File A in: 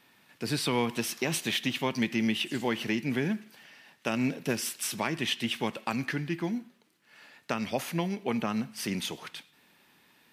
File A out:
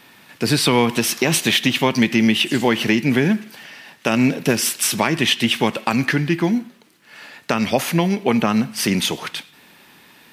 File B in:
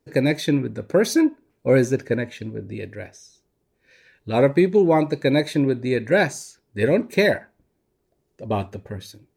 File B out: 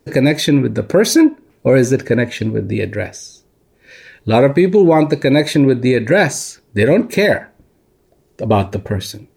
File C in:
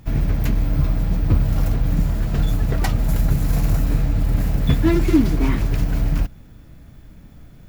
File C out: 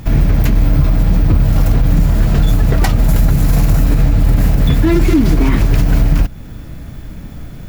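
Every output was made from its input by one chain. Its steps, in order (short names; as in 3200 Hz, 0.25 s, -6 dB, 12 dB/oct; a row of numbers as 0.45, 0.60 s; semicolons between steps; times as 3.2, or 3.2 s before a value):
in parallel at +1 dB: compressor, threshold -28 dBFS; on the sum: limiter -10.5 dBFS; normalise peaks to -3 dBFS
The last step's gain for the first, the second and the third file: +7.5, +7.5, +7.5 dB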